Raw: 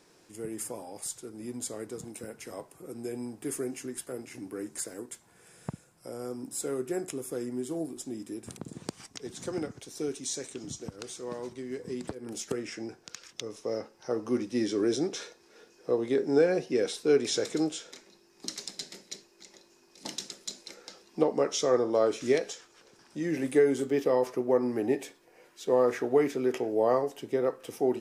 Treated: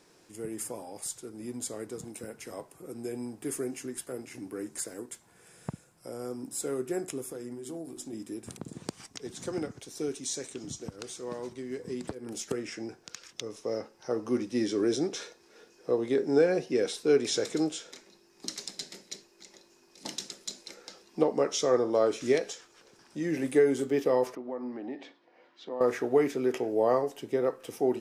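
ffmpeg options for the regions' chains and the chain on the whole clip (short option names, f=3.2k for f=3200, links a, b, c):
-filter_complex "[0:a]asettb=1/sr,asplit=3[a][b][c];[a]atrim=end=7.254[d];[b]atrim=start=7.25:end=8.13,asetpts=PTS-STARTPTS,afade=t=in:d=0.004:c=qsin,afade=t=out:st=0.876:d=0.004:c=qsin,acompressor=threshold=-35dB:ratio=5:attack=3.2:release=140:knee=1:detection=peak,bandreject=f=50:t=h:w=6,bandreject=f=100:t=h:w=6,bandreject=f=150:t=h:w=6,bandreject=f=200:t=h:w=6,bandreject=f=250:t=h:w=6,bandreject=f=300:t=h:w=6,bandreject=f=350:t=h:w=6,bandreject=f=400:t=h:w=6[e];[c]atrim=start=8.126[f];[d][e]acrossfade=d=0.004:c1=hsin:c2=qsin[g];[g][f]acrossfade=d=0.004:c1=qsin:c2=hsin,asettb=1/sr,asplit=3[h][i][j];[h]atrim=end=24.354[k];[i]atrim=start=24.35:end=25.81,asetpts=PTS-STARTPTS,afade=t=in:d=0.004:c=qsin,afade=t=out:st=1.456:d=0.004:c=qsin,acompressor=threshold=-36dB:ratio=2:attack=3.2:release=140:knee=1:detection=peak,highpass=250,equalizer=f=260:t=q:w=4:g=4,equalizer=f=420:t=q:w=4:g=-9,equalizer=f=1.6k:t=q:w=4:g=-3,equalizer=f=2.5k:t=q:w=4:g=-6,lowpass=f=4k:w=0.5412,lowpass=f=4k:w=1.3066[l];[j]atrim=start=25.806[m];[k][l]acrossfade=d=0.004:c1=hsin:c2=qsin[n];[n][m]acrossfade=d=0.004:c1=qsin:c2=hsin"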